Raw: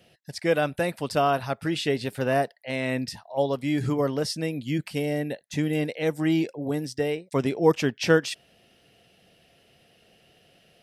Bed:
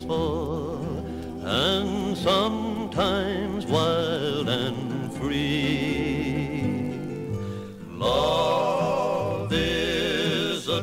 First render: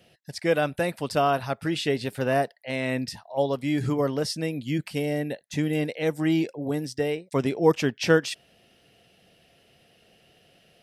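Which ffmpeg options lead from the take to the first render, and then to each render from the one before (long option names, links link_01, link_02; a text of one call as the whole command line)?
ffmpeg -i in.wav -af anull out.wav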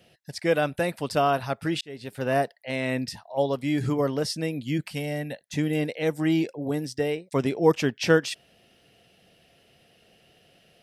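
ffmpeg -i in.wav -filter_complex "[0:a]asettb=1/sr,asplit=3[link_01][link_02][link_03];[link_01]atrim=end=4.904[link_04];[link_02]atrim=start=4.9:end=5.41,asetpts=PTS-STARTPTS,afade=type=in:duration=0.004:curve=qsin,afade=type=out:start_time=0.506:duration=0.004:curve=qsin,equalizer=frequency=370:width=2.3:gain=-11[link_05];[link_03]atrim=start=5.406[link_06];[link_04][link_05]acrossfade=duration=0.004:curve1=hsin:curve2=qsin[link_07];[link_07][link_06]acrossfade=duration=0.004:curve1=qsin:curve2=hsin,asplit=2[link_08][link_09];[link_08]atrim=end=1.81,asetpts=PTS-STARTPTS,afade=type=out:start_time=1.806:duration=0.004:curve=hsin[link_10];[link_09]atrim=start=1.81,asetpts=PTS-STARTPTS,afade=type=in:duration=0.56[link_11];[link_10][link_11]concat=n=2:v=0:a=1" out.wav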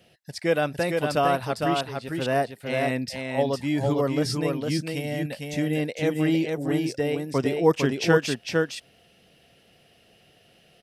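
ffmpeg -i in.wav -af "aecho=1:1:455:0.631" out.wav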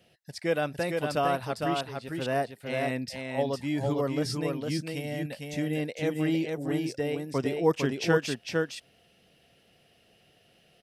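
ffmpeg -i in.wav -af "volume=-4.5dB" out.wav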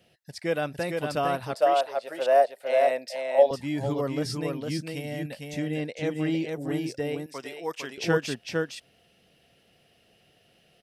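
ffmpeg -i in.wav -filter_complex "[0:a]asettb=1/sr,asplit=3[link_01][link_02][link_03];[link_01]atrim=end=1.544[link_04];[link_02]atrim=start=1.54:end=3.51,asetpts=PTS-STARTPTS,afade=type=in:duration=0.004:curve=qsin,afade=type=out:start_time=1.966:duration=0.004:curve=qsin,highpass=frequency=590:width_type=q:width=4.9[link_05];[link_03]atrim=start=3.506[link_06];[link_04][link_05]acrossfade=duration=0.004:curve1=hsin:curve2=qsin[link_07];[link_07][link_06]acrossfade=duration=0.004:curve1=qsin:curve2=hsin,asettb=1/sr,asplit=3[link_08][link_09][link_10];[link_08]atrim=end=5.584[link_11];[link_09]atrim=start=5.58:end=6.44,asetpts=PTS-STARTPTS,afade=type=in:duration=0.004:curve=qsin,afade=type=out:start_time=0.856:duration=0.004:curve=qsin,lowpass=8500[link_12];[link_10]atrim=start=6.436[link_13];[link_11][link_12]acrossfade=duration=0.004:curve1=hsin:curve2=qsin[link_14];[link_14][link_13]acrossfade=duration=0.004:curve1=qsin:curve2=hsin,asettb=1/sr,asplit=3[link_15][link_16][link_17];[link_15]atrim=end=7.264[link_18];[link_16]atrim=start=7.26:end=7.98,asetpts=PTS-STARTPTS,afade=type=in:duration=0.004:curve=qsin,afade=type=out:start_time=0.716:duration=0.004:curve=qsin,highpass=frequency=1300:poles=1[link_19];[link_17]atrim=start=7.976[link_20];[link_18][link_19]acrossfade=duration=0.004:curve1=hsin:curve2=qsin[link_21];[link_21][link_20]acrossfade=duration=0.004:curve1=qsin:curve2=hsin" out.wav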